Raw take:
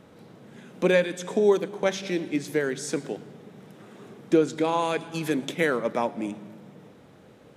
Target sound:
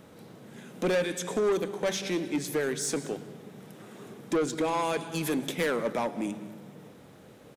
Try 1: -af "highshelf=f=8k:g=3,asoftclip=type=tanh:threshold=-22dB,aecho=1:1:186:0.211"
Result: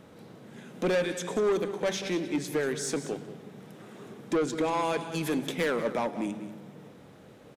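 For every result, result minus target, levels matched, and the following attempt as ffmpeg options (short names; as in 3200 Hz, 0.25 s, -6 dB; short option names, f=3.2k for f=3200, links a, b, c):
echo-to-direct +6.5 dB; 8000 Hz band -3.0 dB
-af "highshelf=f=8k:g=3,asoftclip=type=tanh:threshold=-22dB,aecho=1:1:186:0.1"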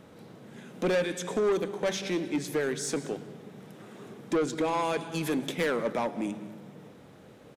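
8000 Hz band -3.0 dB
-af "highshelf=f=8k:g=10.5,asoftclip=type=tanh:threshold=-22dB,aecho=1:1:186:0.1"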